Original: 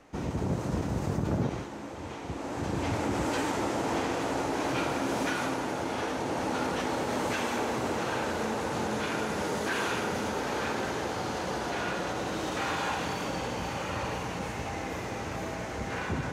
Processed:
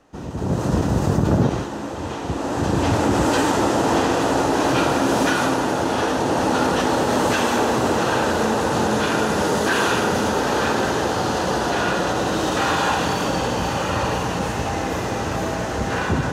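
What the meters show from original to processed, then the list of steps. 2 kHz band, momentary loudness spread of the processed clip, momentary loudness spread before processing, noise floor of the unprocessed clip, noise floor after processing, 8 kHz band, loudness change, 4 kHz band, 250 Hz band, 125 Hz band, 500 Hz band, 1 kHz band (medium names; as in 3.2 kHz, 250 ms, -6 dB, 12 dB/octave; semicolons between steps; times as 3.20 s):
+10.0 dB, 6 LU, 5 LU, -38 dBFS, -28 dBFS, +11.5 dB, +11.0 dB, +11.0 dB, +11.5 dB, +11.0 dB, +11.5 dB, +11.5 dB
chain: peaking EQ 2.2 kHz -10 dB 0.21 oct; level rider gain up to 11.5 dB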